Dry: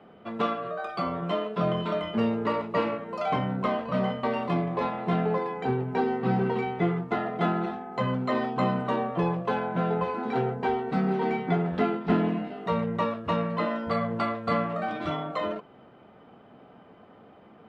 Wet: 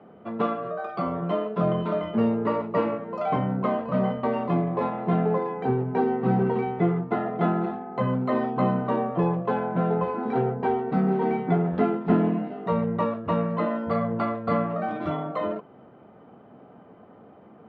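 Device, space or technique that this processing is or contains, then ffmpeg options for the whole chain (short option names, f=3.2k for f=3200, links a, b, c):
through cloth: -af "highpass=75,highshelf=f=2.4k:g=-17,volume=3.5dB"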